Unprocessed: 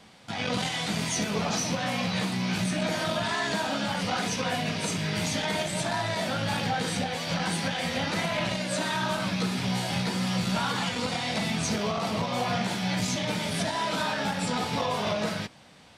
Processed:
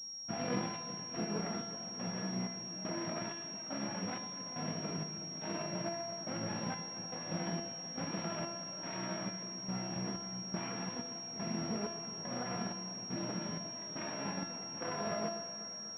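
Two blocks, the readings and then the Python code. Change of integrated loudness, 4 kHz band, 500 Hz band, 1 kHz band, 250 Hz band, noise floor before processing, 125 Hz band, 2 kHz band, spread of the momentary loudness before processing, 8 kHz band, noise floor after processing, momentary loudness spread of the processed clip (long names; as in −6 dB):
−11.0 dB, −10.0 dB, −10.5 dB, −13.5 dB, −10.0 dB, −38 dBFS, −12.0 dB, −16.5 dB, 1 LU, can't be measured, −45 dBFS, 4 LU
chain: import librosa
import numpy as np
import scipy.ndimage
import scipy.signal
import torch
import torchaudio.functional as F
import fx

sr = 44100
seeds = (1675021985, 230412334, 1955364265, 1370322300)

y = fx.self_delay(x, sr, depth_ms=0.39)
y = scipy.signal.sosfilt(scipy.signal.butter(2, 190.0, 'highpass', fs=sr, output='sos'), y)
y = fx.low_shelf(y, sr, hz=420.0, db=11.0)
y = fx.rider(y, sr, range_db=10, speed_s=2.0)
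y = fx.step_gate(y, sr, bpm=158, pattern='...xxxxx.', floor_db=-12.0, edge_ms=4.5)
y = fx.air_absorb(y, sr, metres=130.0)
y = fx.comb_fb(y, sr, f0_hz=340.0, decay_s=1.0, harmonics='all', damping=0.0, mix_pct=90)
y = fx.echo_alternate(y, sr, ms=122, hz=890.0, feedback_pct=85, wet_db=-12)
y = fx.pwm(y, sr, carrier_hz=5600.0)
y = F.gain(torch.from_numpy(y), 6.0).numpy()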